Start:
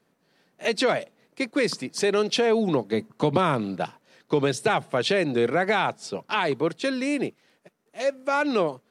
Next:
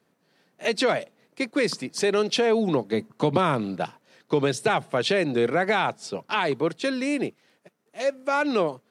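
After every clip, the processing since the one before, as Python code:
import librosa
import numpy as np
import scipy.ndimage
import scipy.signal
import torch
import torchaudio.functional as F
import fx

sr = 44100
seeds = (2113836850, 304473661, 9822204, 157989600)

y = scipy.signal.sosfilt(scipy.signal.butter(2, 56.0, 'highpass', fs=sr, output='sos'), x)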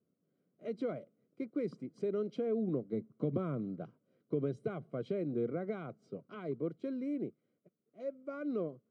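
y = np.convolve(x, np.full(50, 1.0 / 50))[:len(x)]
y = F.gain(torch.from_numpy(y), -8.5).numpy()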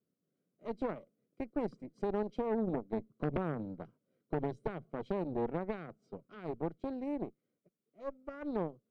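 y = fx.cheby_harmonics(x, sr, harmonics=(4, 5, 7), levels_db=(-9, -13, -15), full_scale_db=-21.5)
y = F.gain(torch.from_numpy(y), -3.5).numpy()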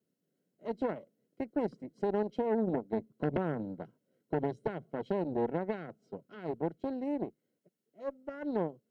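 y = fx.notch_comb(x, sr, f0_hz=1200.0)
y = F.gain(torch.from_numpy(y), 3.5).numpy()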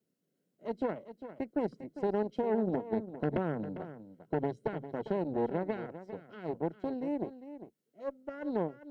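y = x + 10.0 ** (-12.5 / 20.0) * np.pad(x, (int(401 * sr / 1000.0), 0))[:len(x)]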